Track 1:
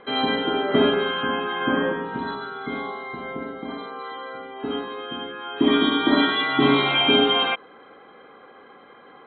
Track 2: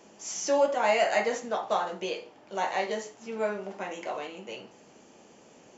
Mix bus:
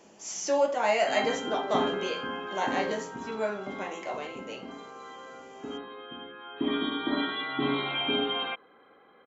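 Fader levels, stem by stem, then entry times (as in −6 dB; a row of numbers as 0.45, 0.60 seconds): −10.5, −1.0 decibels; 1.00, 0.00 seconds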